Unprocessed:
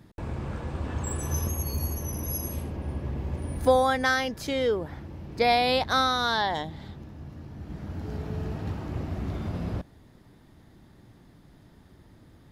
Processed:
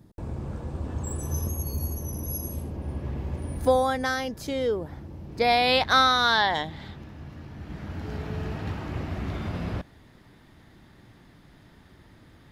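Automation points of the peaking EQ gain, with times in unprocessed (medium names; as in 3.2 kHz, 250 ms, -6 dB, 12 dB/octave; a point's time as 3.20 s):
peaking EQ 2.2 kHz 2.3 oct
2.56 s -9 dB
3.12 s +1 dB
4.07 s -5 dB
5.24 s -5 dB
5.76 s +7 dB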